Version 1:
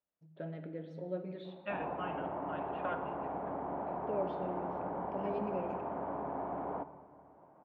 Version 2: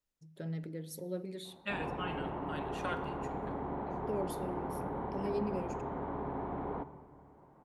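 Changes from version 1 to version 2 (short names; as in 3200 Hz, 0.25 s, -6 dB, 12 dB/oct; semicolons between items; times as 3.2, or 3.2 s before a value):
first voice: send -10.5 dB; second voice: remove air absorption 240 m; master: remove speaker cabinet 120–2800 Hz, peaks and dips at 130 Hz -9 dB, 230 Hz -5 dB, 400 Hz -5 dB, 640 Hz +7 dB, 2000 Hz -5 dB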